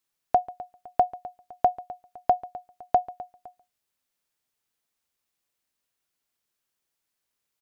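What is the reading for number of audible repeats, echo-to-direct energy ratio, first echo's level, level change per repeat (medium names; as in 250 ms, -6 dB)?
2, -17.5 dB, -18.0 dB, -7.5 dB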